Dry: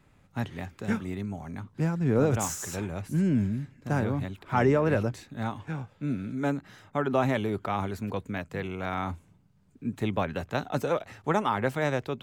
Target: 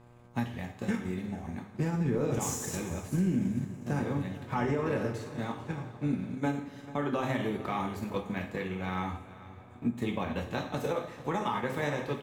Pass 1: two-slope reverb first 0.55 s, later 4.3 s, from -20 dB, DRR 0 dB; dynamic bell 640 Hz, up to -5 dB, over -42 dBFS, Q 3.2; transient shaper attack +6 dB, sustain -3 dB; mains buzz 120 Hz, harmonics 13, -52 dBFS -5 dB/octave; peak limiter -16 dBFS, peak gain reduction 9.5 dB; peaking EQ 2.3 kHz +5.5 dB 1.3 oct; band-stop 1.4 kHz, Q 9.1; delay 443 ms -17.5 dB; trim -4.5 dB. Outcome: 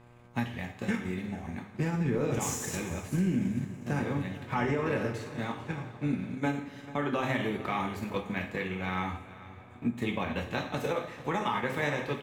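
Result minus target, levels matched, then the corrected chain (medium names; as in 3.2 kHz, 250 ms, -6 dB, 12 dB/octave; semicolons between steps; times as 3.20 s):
2 kHz band +3.5 dB
two-slope reverb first 0.55 s, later 4.3 s, from -20 dB, DRR 0 dB; dynamic bell 640 Hz, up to -5 dB, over -42 dBFS, Q 3.2; transient shaper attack +6 dB, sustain -3 dB; mains buzz 120 Hz, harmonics 13, -52 dBFS -5 dB/octave; peak limiter -16 dBFS, peak gain reduction 9.5 dB; band-stop 1.4 kHz, Q 9.1; delay 443 ms -17.5 dB; trim -4.5 dB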